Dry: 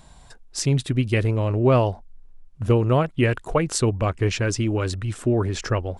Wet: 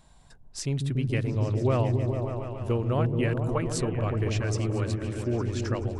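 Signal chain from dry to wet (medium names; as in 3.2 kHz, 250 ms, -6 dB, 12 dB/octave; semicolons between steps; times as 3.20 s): delay with an opening low-pass 143 ms, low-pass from 200 Hz, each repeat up 1 oct, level 0 dB; trim -8.5 dB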